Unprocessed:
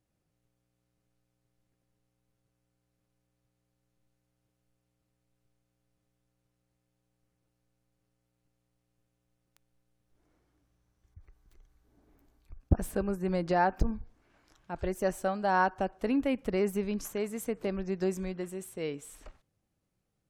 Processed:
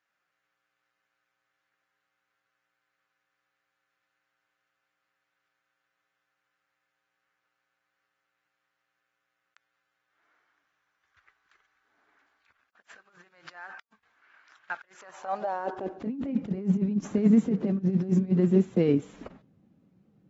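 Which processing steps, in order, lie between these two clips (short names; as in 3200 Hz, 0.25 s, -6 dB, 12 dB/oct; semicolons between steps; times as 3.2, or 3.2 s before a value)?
block floating point 5-bit; RIAA curve playback; negative-ratio compressor -30 dBFS, ratio -0.5; high-pass sweep 1500 Hz -> 210 Hz, 14.93–16.15; AAC 24 kbps 44100 Hz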